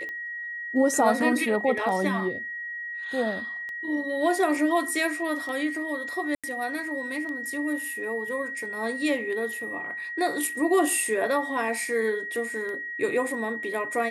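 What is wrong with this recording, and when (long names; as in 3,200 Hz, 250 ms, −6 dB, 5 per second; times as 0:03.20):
scratch tick 33 1/3 rpm −25 dBFS
whistle 1,900 Hz −32 dBFS
0:06.35–0:06.44: drop-out 86 ms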